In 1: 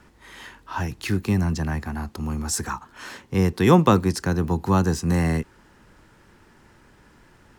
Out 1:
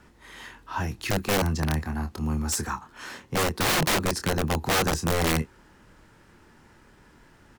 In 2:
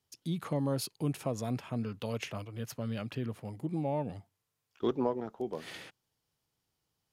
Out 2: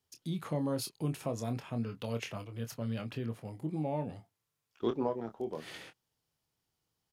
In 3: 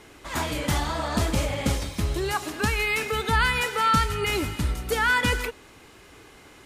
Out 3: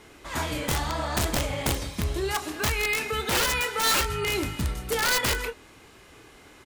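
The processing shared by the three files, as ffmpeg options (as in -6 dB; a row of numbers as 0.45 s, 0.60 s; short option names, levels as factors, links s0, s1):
-filter_complex "[0:a]asplit=2[s0][s1];[s1]adelay=26,volume=0.376[s2];[s0][s2]amix=inputs=2:normalize=0,acontrast=69,aeval=exprs='(mod(2.99*val(0)+1,2)-1)/2.99':c=same,volume=0.376"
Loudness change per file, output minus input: -3.5 LU, -1.5 LU, -1.0 LU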